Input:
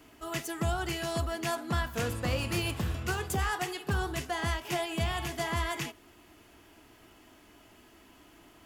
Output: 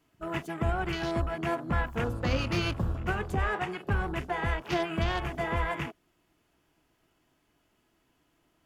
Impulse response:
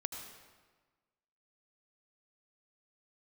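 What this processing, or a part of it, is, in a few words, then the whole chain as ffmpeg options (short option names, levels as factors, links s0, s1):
octave pedal: -filter_complex "[0:a]asplit=2[s0][s1];[s1]asetrate=22050,aresample=44100,atempo=2,volume=0.501[s2];[s0][s2]amix=inputs=2:normalize=0,asettb=1/sr,asplit=3[s3][s4][s5];[s3]atrim=end=3.314[s6];[s4]atrim=start=3.31:end=3.76,asetpts=PTS-STARTPTS,afade=t=in:d=0.004:c=qsin,afade=t=out:st=0.446:d=0.004:c=qsin,lowpass=10000[s7];[s5]atrim=start=3.756[s8];[s6][s7]acrossfade=d=0.004:c1=hsin:c2=qsin[s9];[s9][s8]acrossfade=d=0.004:c1=qsin:c2=hsin,afwtdn=0.01,volume=1.19"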